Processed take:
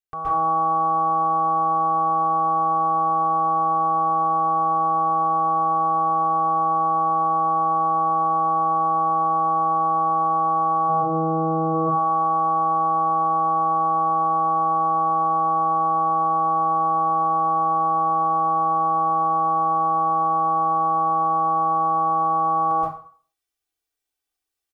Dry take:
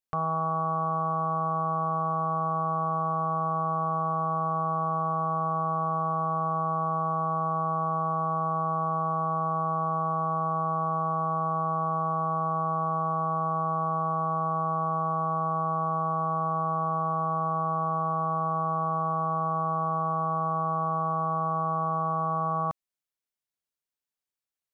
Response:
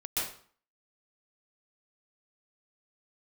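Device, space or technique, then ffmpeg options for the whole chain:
microphone above a desk: -filter_complex "[0:a]asplit=3[s0][s1][s2];[s0]afade=t=out:st=10.88:d=0.02[s3];[s1]equalizer=f=125:t=o:w=1:g=11,equalizer=f=250:t=o:w=1:g=10,equalizer=f=500:t=o:w=1:g=9,equalizer=f=1000:t=o:w=1:g=-10,afade=t=in:st=10.88:d=0.02,afade=t=out:st=11.73:d=0.02[s4];[s2]afade=t=in:st=11.73:d=0.02[s5];[s3][s4][s5]amix=inputs=3:normalize=0,aecho=1:1:2.6:0.79[s6];[1:a]atrim=start_sample=2205[s7];[s6][s7]afir=irnorm=-1:irlink=0"

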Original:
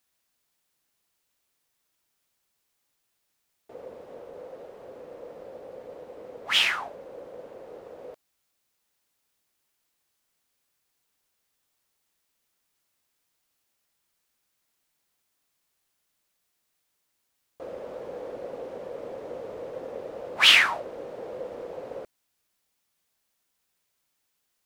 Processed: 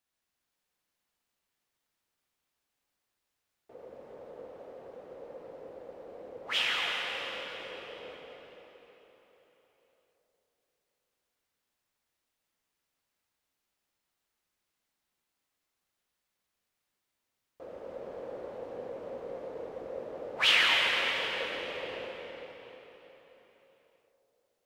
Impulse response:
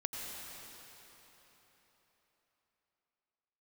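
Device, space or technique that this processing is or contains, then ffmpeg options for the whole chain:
swimming-pool hall: -filter_complex "[1:a]atrim=start_sample=2205[s0];[0:a][s0]afir=irnorm=-1:irlink=0,highshelf=f=5600:g=-7,volume=0.562"

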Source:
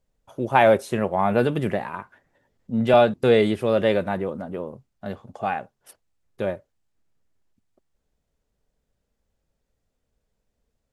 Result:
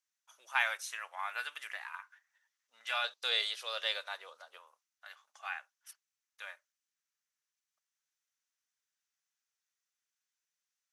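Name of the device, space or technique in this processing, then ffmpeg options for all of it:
headphones lying on a table: -filter_complex "[0:a]asettb=1/sr,asplit=3[s0][s1][s2];[s0]atrim=end=3.044[s3];[s1]atrim=start=3.04:end=4.58,asetpts=PTS-STARTPTS,afade=t=in:d=0.004:c=qsin,afade=t=out:st=1.536:d=0.004:c=qsin,equalizer=f=500:t=o:w=1:g=12,equalizer=f=2000:t=o:w=1:g=-6,equalizer=f=4000:t=o:w=1:g=11[s4];[s2]atrim=start=4.576[s5];[s3][s4]acrossfade=d=0.004:c1=hsin:c2=qsin[s6];[s6][s5]acrossfade=d=0.004:c1=qsin:c2=hsin,highpass=f=1300:w=0.5412,highpass=f=1300:w=1.3066,equalizer=f=6000:t=o:w=0.31:g=8.5,volume=0.562"

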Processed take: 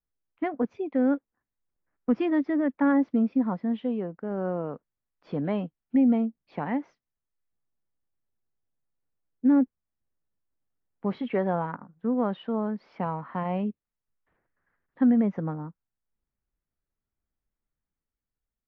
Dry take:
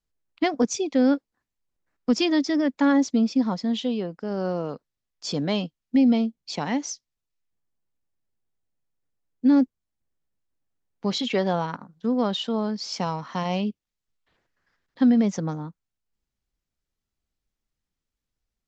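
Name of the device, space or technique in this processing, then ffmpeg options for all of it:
action camera in a waterproof case: -af "lowpass=f=2000:w=0.5412,lowpass=f=2000:w=1.3066,dynaudnorm=f=390:g=5:m=1.5,volume=0.501" -ar 22050 -c:a aac -b:a 48k

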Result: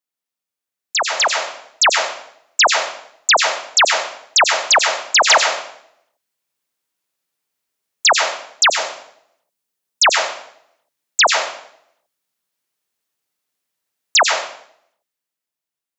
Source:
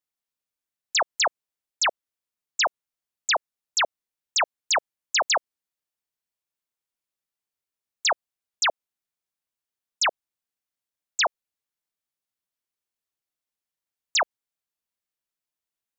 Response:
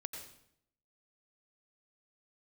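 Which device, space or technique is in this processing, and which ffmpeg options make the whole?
far laptop microphone: -filter_complex "[1:a]atrim=start_sample=2205[s0];[0:a][s0]afir=irnorm=-1:irlink=0,highpass=130,dynaudnorm=f=200:g=13:m=2.82,asettb=1/sr,asplit=3[s1][s2][s3];[s1]atrim=end=8.684[s4];[s2]atrim=start=8.68:end=10.02,asetpts=PTS-STARTPTS,afade=t=in:d=0.004:c=qsin,afade=t=out:st=1.336:d=0.004:c=qsin,equalizer=f=1700:w=0.41:g=-4.5[s5];[s3]atrim=start=10.016[s6];[s4][s5]acrossfade=d=0.004:c1=hsin:c2=qsin[s7];[s7][s6]acrossfade=d=0.004:c1=qsin:c2=hsin,volume=1.68"

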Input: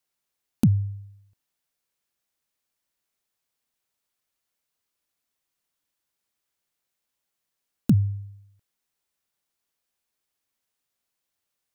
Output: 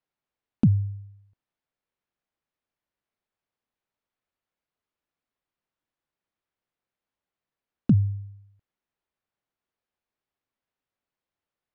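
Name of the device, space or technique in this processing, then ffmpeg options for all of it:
phone in a pocket: -af "lowpass=3900,highshelf=f=2200:g=-9.5"

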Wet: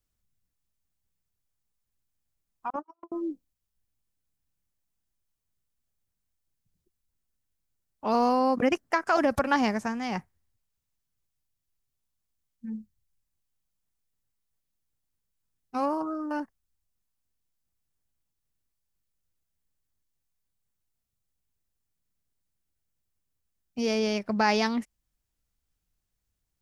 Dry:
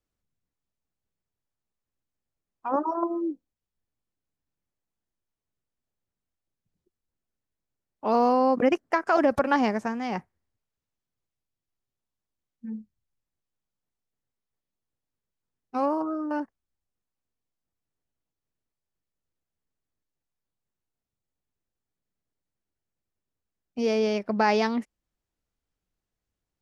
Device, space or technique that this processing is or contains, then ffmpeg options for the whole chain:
smiley-face EQ: -filter_complex "[0:a]lowshelf=f=130:g=7,equalizer=f=420:t=o:w=1.9:g=-4.5,highshelf=f=5300:g=8.5,asettb=1/sr,asplit=3[s0][s1][s2];[s0]atrim=end=2.704[s3];[s1]atrim=start=2.7:end=3.12,asetpts=PTS-STARTPTS,afade=t=in:d=0.004:c=qsin,afade=t=out:st=0.416:d=0.004:c=qsin,agate=range=0.00251:threshold=0.0631:ratio=16:detection=peak[s4];[s2]atrim=start=3.116[s5];[s3][s4]acrossfade=d=0.004:c1=hsin:c2=qsin[s6];[s6][s5]acrossfade=d=0.004:c1=qsin:c2=hsin"

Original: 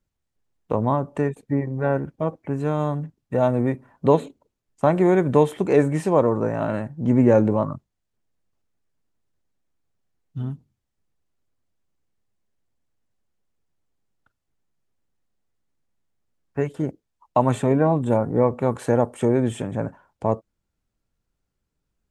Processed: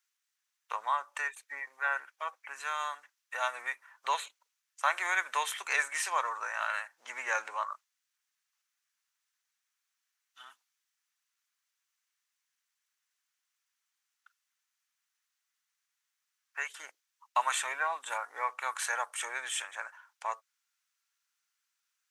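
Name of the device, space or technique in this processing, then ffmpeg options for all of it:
headphones lying on a table: -af "highpass=f=1300:w=0.5412,highpass=f=1300:w=1.3066,equalizer=f=6000:t=o:w=0.24:g=4.5,volume=1.88"

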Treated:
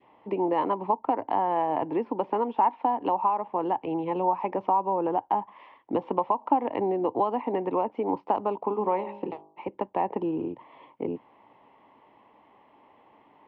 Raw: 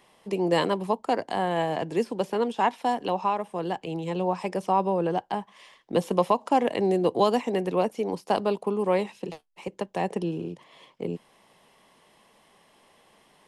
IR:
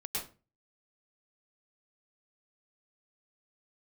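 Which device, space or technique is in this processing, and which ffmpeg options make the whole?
bass amplifier: -filter_complex "[0:a]asettb=1/sr,asplit=3[s0][s1][s2];[s0]atrim=end=8.664[s3];[s1]atrim=start=8.66:end=9.68,asetpts=PTS-STARTPTS,afade=t=in:d=0.004:c=qsin,afade=t=out:st=1.016:d=0.004:c=qsin,bandreject=f=50.94:t=h:w=4,bandreject=f=101.88:t=h:w=4,bandreject=f=152.82:t=h:w=4,bandreject=f=203.76:t=h:w=4,bandreject=f=254.7:t=h:w=4,bandreject=f=305.64:t=h:w=4,bandreject=f=356.58:t=h:w=4,bandreject=f=407.52:t=h:w=4,bandreject=f=458.46:t=h:w=4,bandreject=f=509.4:t=h:w=4,bandreject=f=560.34:t=h:w=4,bandreject=f=611.28:t=h:w=4,bandreject=f=662.22:t=h:w=4,bandreject=f=713.16:t=h:w=4,bandreject=f=764.1:t=h:w=4,bandreject=f=815.04:t=h:w=4,bandreject=f=865.98:t=h:w=4,bandreject=f=916.92:t=h:w=4,bandreject=f=967.86:t=h:w=4,bandreject=f=1018.8:t=h:w=4,bandreject=f=1069.74:t=h:w=4,bandreject=f=1120.68:t=h:w=4,bandreject=f=1171.62:t=h:w=4[s4];[s2]atrim=start=9.676[s5];[s3][s4]acrossfade=d=0.004:c1=hsin:c2=qsin[s6];[s6][s5]acrossfade=d=0.004:c1=qsin:c2=hsin,adynamicequalizer=threshold=0.0178:dfrequency=1000:dqfactor=1.1:tfrequency=1000:tqfactor=1.1:attack=5:release=100:ratio=0.375:range=2.5:mode=boostabove:tftype=bell,acompressor=threshold=0.0562:ratio=5,highpass=61,equalizer=f=110:t=q:w=4:g=4,equalizer=f=170:t=q:w=4:g=-8,equalizer=f=290:t=q:w=4:g=9,equalizer=f=900:t=q:w=4:g=9,equalizer=f=1600:t=q:w=4:g=-8,lowpass=f=2400:w=0.5412,lowpass=f=2400:w=1.3066"

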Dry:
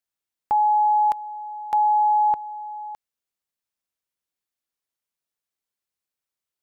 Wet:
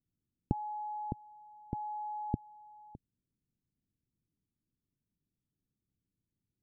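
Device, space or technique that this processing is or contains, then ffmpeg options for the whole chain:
the neighbour's flat through the wall: -af "lowpass=f=280:w=0.5412,lowpass=f=280:w=1.3066,equalizer=f=120:t=o:w=0.93:g=5,volume=7.08"

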